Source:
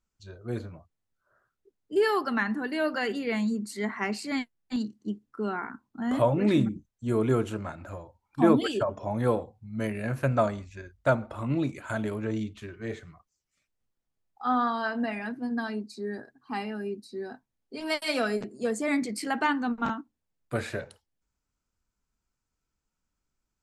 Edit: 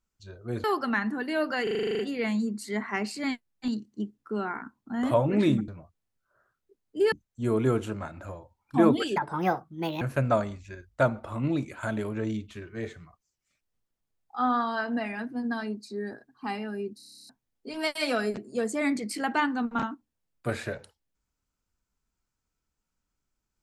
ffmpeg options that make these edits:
-filter_complex "[0:a]asplit=26[s0][s1][s2][s3][s4][s5][s6][s7][s8][s9][s10][s11][s12][s13][s14][s15][s16][s17][s18][s19][s20][s21][s22][s23][s24][s25];[s0]atrim=end=0.642[s26];[s1]atrim=start=2.078:end=3.112[s27];[s2]atrim=start=3.068:end=3.112[s28];[s3]atrim=start=3.068:end=3.112[s29];[s4]atrim=start=3.068:end=3.112[s30];[s5]atrim=start=3.068:end=3.112[s31];[s6]atrim=start=3.068:end=3.112[s32];[s7]atrim=start=3.068:end=3.112[s33];[s8]atrim=start=3.068:end=3.112[s34];[s9]atrim=start=3.068:end=3.112[s35];[s10]atrim=start=3.068:end=6.762[s36];[s11]atrim=start=0.638:end=2.082[s37];[s12]atrim=start=6.758:end=8.804[s38];[s13]atrim=start=8.8:end=10.08,asetpts=PTS-STARTPTS,asetrate=66150,aresample=44100[s39];[s14]atrim=start=10.076:end=17.062[s40];[s15]atrim=start=17.028:end=17.062[s41];[s16]atrim=start=17.028:end=17.062[s42];[s17]atrim=start=17.028:end=17.062[s43];[s18]atrim=start=17.028:end=17.062[s44];[s19]atrim=start=17.028:end=17.062[s45];[s20]atrim=start=17.028:end=17.062[s46];[s21]atrim=start=17.028:end=17.062[s47];[s22]atrim=start=17.028:end=17.062[s48];[s23]atrim=start=17.028:end=17.062[s49];[s24]atrim=start=17.028:end=17.062[s50];[s25]atrim=start=17.358[s51];[s26][s27]acrossfade=d=0.004:c1=hsin:c2=hsin[s52];[s52][s28]acrossfade=d=0.004:c1=hsin:c2=hsin[s53];[s53][s29]acrossfade=d=0.004:c1=hsin:c2=hsin[s54];[s54][s30]acrossfade=d=0.004:c1=hsin:c2=hsin[s55];[s55][s31]acrossfade=d=0.004:c1=hsin:c2=hsin[s56];[s56][s32]acrossfade=d=0.004:c1=hsin:c2=hsin[s57];[s57][s33]acrossfade=d=0.004:c1=hsin:c2=hsin[s58];[s58][s34]acrossfade=d=0.004:c1=hsin:c2=hsin[s59];[s59][s35]acrossfade=d=0.004:c1=hsin:c2=hsin[s60];[s60][s36]acrossfade=d=0.004:c1=hsin:c2=hsin[s61];[s61][s37]acrossfade=d=0.004:c1=hsin:c2=hsin[s62];[s62][s38]acrossfade=d=0.004:c1=hsin:c2=hsin[s63];[s63][s39]acrossfade=d=0.004:c1=hsin:c2=hsin[s64];[s64][s40]acrossfade=d=0.004:c1=hsin:c2=hsin[s65];[s65][s41]acrossfade=d=0.004:c1=hsin:c2=hsin[s66];[s66][s42]acrossfade=d=0.004:c1=hsin:c2=hsin[s67];[s67][s43]acrossfade=d=0.004:c1=hsin:c2=hsin[s68];[s68][s44]acrossfade=d=0.004:c1=hsin:c2=hsin[s69];[s69][s45]acrossfade=d=0.004:c1=hsin:c2=hsin[s70];[s70][s46]acrossfade=d=0.004:c1=hsin:c2=hsin[s71];[s71][s47]acrossfade=d=0.004:c1=hsin:c2=hsin[s72];[s72][s48]acrossfade=d=0.004:c1=hsin:c2=hsin[s73];[s73][s49]acrossfade=d=0.004:c1=hsin:c2=hsin[s74];[s74][s50]acrossfade=d=0.004:c1=hsin:c2=hsin[s75];[s75][s51]acrossfade=d=0.004:c1=hsin:c2=hsin"

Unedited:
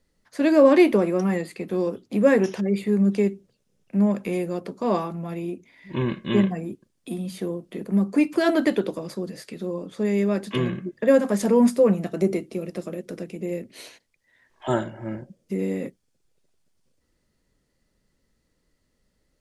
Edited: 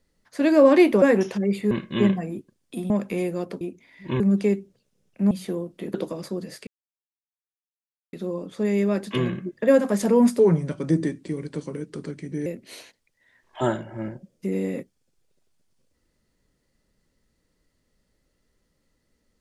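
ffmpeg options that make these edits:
-filter_complex "[0:a]asplit=11[s0][s1][s2][s3][s4][s5][s6][s7][s8][s9][s10];[s0]atrim=end=1.022[s11];[s1]atrim=start=2.248:end=2.942[s12];[s2]atrim=start=6.048:end=7.242[s13];[s3]atrim=start=4.048:end=4.762[s14];[s4]atrim=start=5.458:end=6.052[s15];[s5]atrim=start=2.938:end=4.052[s16];[s6]atrim=start=7.238:end=7.872[s17];[s7]atrim=start=8.798:end=9.53,asetpts=PTS-STARTPTS,afade=t=out:st=0.728:d=0.004:c=hsin,apad=pad_dur=1.46[s18];[s8]atrim=start=9.53:end=11.794,asetpts=PTS-STARTPTS,afade=t=in:d=0.004:c=hsin[s19];[s9]atrim=start=11.79:end=13.53,asetpts=PTS-STARTPTS,asetrate=37044,aresample=44100[s20];[s10]atrim=start=13.526[s21];[s11][s12]acrossfade=d=0.004:c1=hsin:c2=hsin[s22];[s22][s13]acrossfade=d=0.004:c1=hsin:c2=hsin[s23];[s23][s14]acrossfade=d=0.004:c1=hsin:c2=hsin[s24];[s24][s15]acrossfade=d=0.004:c1=hsin:c2=hsin[s25];[s25][s16]acrossfade=d=0.004:c1=hsin:c2=hsin[s26];[s26][s17]acrossfade=d=0.004:c1=hsin:c2=hsin[s27];[s18][s19]concat=n=2:v=0:a=1[s28];[s27][s28]acrossfade=d=0.004:c1=hsin:c2=hsin[s29];[s29][s20]acrossfade=d=0.004:c1=hsin:c2=hsin[s30];[s30][s21]acrossfade=d=0.004:c1=hsin:c2=hsin"

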